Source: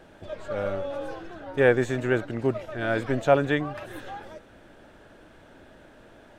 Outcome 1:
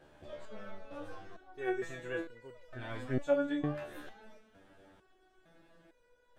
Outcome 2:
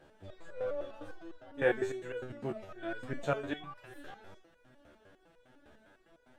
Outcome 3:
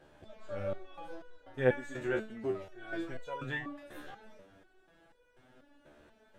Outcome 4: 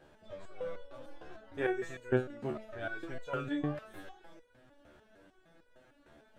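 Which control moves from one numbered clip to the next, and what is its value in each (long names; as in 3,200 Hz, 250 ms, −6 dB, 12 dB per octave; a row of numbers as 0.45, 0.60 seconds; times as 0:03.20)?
step-sequenced resonator, speed: 2.2, 9.9, 4.1, 6.6 Hertz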